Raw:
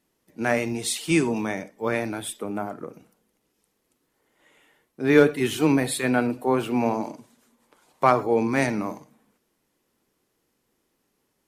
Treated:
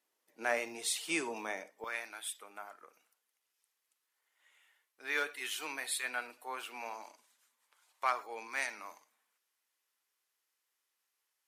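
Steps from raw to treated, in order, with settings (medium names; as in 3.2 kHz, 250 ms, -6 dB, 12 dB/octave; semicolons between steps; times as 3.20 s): high-pass 580 Hz 12 dB/octave, from 1.84 s 1.3 kHz; trim -7 dB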